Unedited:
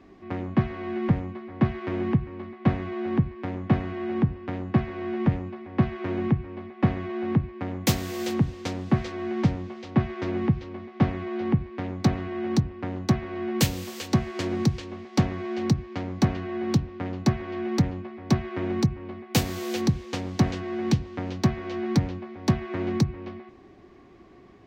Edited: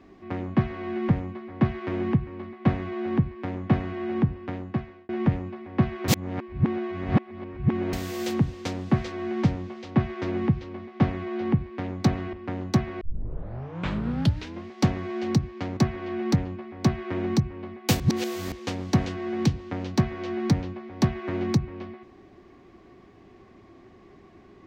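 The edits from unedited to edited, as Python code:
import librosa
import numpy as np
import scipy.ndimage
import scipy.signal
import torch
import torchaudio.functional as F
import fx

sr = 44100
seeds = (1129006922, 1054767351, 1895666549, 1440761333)

y = fx.edit(x, sr, fx.fade_out_span(start_s=4.43, length_s=0.66),
    fx.reverse_span(start_s=6.08, length_s=1.85),
    fx.cut(start_s=12.33, length_s=0.35),
    fx.tape_start(start_s=13.36, length_s=1.65),
    fx.cut(start_s=16.12, length_s=1.11),
    fx.reverse_span(start_s=19.46, length_s=0.52), tone=tone)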